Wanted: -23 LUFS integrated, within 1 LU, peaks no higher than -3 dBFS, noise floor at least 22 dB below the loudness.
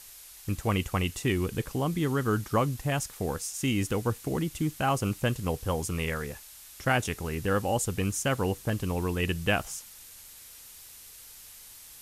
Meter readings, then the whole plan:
noise floor -49 dBFS; noise floor target -52 dBFS; loudness -29.5 LUFS; peak -12.5 dBFS; loudness target -23.0 LUFS
-> noise print and reduce 6 dB; gain +6.5 dB

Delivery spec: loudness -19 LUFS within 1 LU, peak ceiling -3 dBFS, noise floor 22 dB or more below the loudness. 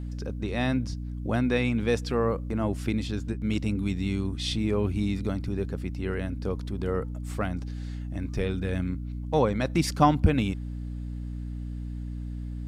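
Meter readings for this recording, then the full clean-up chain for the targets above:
hum 60 Hz; harmonics up to 300 Hz; hum level -32 dBFS; loudness -29.0 LUFS; peak -8.0 dBFS; loudness target -19.0 LUFS
-> de-hum 60 Hz, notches 5; gain +10 dB; limiter -3 dBFS

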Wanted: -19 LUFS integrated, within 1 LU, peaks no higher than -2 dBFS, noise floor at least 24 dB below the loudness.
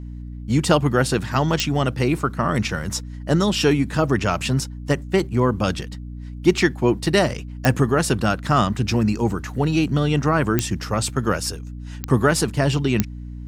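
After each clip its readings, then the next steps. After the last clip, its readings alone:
clicks 5; hum 60 Hz; harmonics up to 300 Hz; hum level -31 dBFS; loudness -21.0 LUFS; peak -3.0 dBFS; loudness target -19.0 LUFS
-> de-click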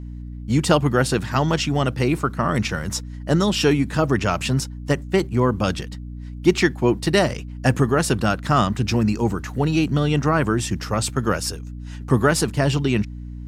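clicks 0; hum 60 Hz; harmonics up to 300 Hz; hum level -31 dBFS
-> notches 60/120/180/240/300 Hz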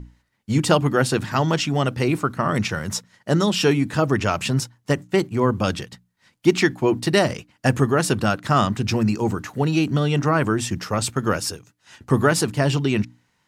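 hum none; loudness -21.5 LUFS; peak -2.5 dBFS; loudness target -19.0 LUFS
-> gain +2.5 dB; limiter -2 dBFS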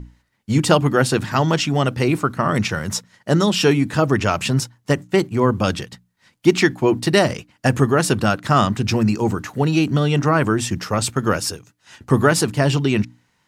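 loudness -19.0 LUFS; peak -2.0 dBFS; noise floor -66 dBFS

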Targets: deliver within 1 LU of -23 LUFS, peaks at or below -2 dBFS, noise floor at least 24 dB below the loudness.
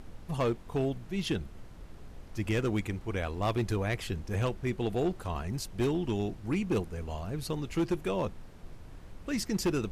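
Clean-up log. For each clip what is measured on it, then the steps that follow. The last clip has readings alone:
clipped 1.4%; flat tops at -23.0 dBFS; noise floor -48 dBFS; noise floor target -57 dBFS; loudness -33.0 LUFS; peak -23.0 dBFS; loudness target -23.0 LUFS
-> clip repair -23 dBFS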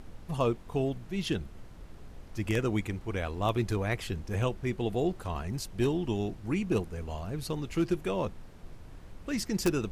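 clipped 0.0%; noise floor -48 dBFS; noise floor target -56 dBFS
-> noise print and reduce 8 dB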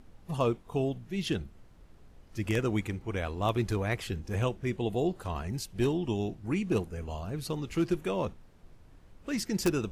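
noise floor -55 dBFS; noise floor target -57 dBFS
-> noise print and reduce 6 dB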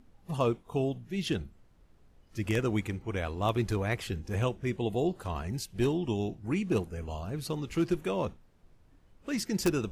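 noise floor -61 dBFS; loudness -32.5 LUFS; peak -14.0 dBFS; loudness target -23.0 LUFS
-> gain +9.5 dB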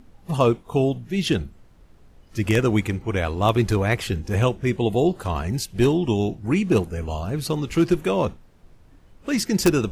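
loudness -23.0 LUFS; peak -4.5 dBFS; noise floor -52 dBFS

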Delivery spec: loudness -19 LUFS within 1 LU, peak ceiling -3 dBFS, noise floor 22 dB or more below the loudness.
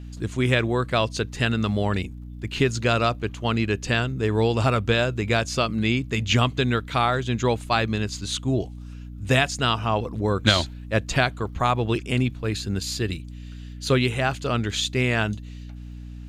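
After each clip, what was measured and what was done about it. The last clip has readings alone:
ticks 30/s; hum 60 Hz; harmonics up to 300 Hz; hum level -36 dBFS; loudness -23.5 LUFS; peak -3.5 dBFS; loudness target -19.0 LUFS
-> de-click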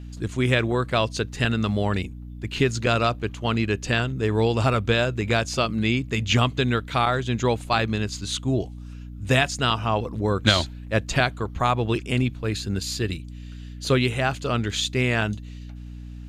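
ticks 0/s; hum 60 Hz; harmonics up to 300 Hz; hum level -36 dBFS
-> de-hum 60 Hz, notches 5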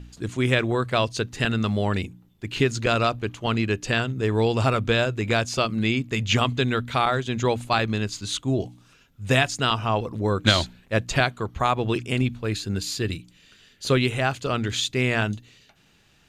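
hum none; loudness -24.0 LUFS; peak -3.5 dBFS; loudness target -19.0 LUFS
-> gain +5 dB; limiter -3 dBFS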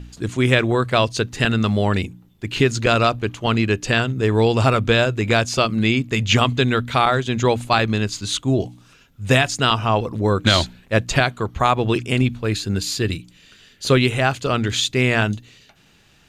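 loudness -19.0 LUFS; peak -3.0 dBFS; noise floor -54 dBFS

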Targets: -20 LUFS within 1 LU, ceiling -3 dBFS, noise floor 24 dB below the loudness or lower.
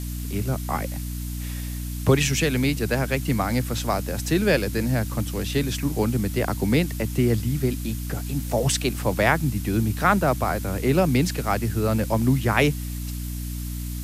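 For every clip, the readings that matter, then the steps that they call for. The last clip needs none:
hum 60 Hz; harmonics up to 300 Hz; hum level -28 dBFS; noise floor -31 dBFS; noise floor target -48 dBFS; loudness -24.0 LUFS; peak -4.5 dBFS; loudness target -20.0 LUFS
-> notches 60/120/180/240/300 Hz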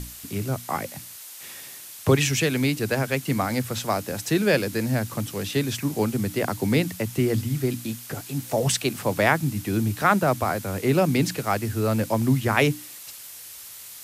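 hum none; noise floor -42 dBFS; noise floor target -49 dBFS
-> noise print and reduce 7 dB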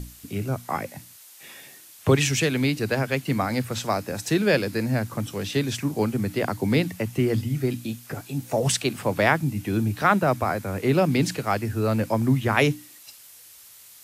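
noise floor -49 dBFS; loudness -24.5 LUFS; peak -5.0 dBFS; loudness target -20.0 LUFS
-> gain +4.5 dB; limiter -3 dBFS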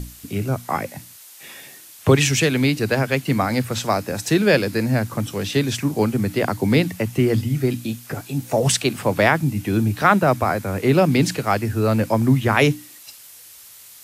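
loudness -20.0 LUFS; peak -3.0 dBFS; noise floor -44 dBFS

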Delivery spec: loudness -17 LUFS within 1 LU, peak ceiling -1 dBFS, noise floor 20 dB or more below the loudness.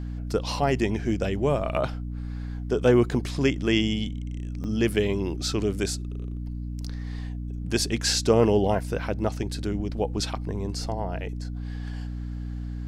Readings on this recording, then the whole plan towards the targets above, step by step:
dropouts 3; longest dropout 1.3 ms; hum 60 Hz; harmonics up to 300 Hz; hum level -30 dBFS; loudness -27.0 LUFS; peak -7.0 dBFS; loudness target -17.0 LUFS
-> interpolate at 1.77/4.64/11.94, 1.3 ms; notches 60/120/180/240/300 Hz; gain +10 dB; limiter -1 dBFS

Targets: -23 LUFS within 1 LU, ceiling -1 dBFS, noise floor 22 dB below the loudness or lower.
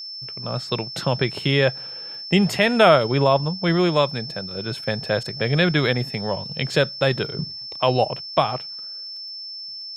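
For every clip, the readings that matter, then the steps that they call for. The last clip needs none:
ticks 18/s; steady tone 5300 Hz; tone level -32 dBFS; loudness -22.0 LUFS; peak -2.0 dBFS; loudness target -23.0 LUFS
-> de-click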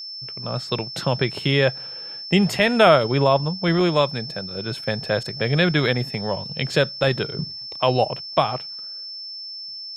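ticks 0/s; steady tone 5300 Hz; tone level -32 dBFS
-> notch 5300 Hz, Q 30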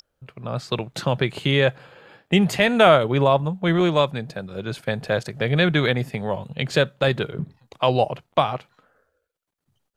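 steady tone none; loudness -21.5 LUFS; peak -2.0 dBFS; loudness target -23.0 LUFS
-> gain -1.5 dB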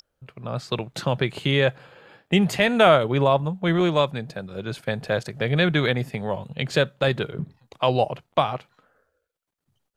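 loudness -23.0 LUFS; peak -3.5 dBFS; noise floor -78 dBFS

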